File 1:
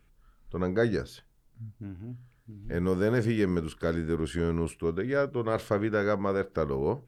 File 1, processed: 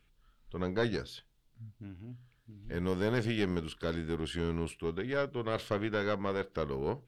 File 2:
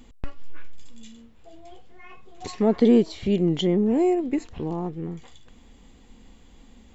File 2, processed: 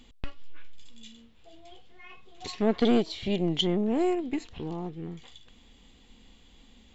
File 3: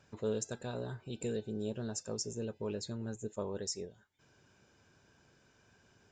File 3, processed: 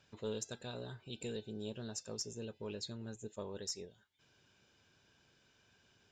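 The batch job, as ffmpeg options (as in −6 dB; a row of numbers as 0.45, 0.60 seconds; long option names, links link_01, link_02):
-af "aeval=exprs='0.422*(cos(1*acos(clip(val(0)/0.422,-1,1)))-cos(1*PI/2))+0.0668*(cos(4*acos(clip(val(0)/0.422,-1,1)))-cos(4*PI/2))+0.00841*(cos(6*acos(clip(val(0)/0.422,-1,1)))-cos(6*PI/2))':channel_layout=same,equalizer=frequency=3400:width=1.1:gain=10,volume=-6dB"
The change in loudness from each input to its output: −5.0, −5.5, −4.5 LU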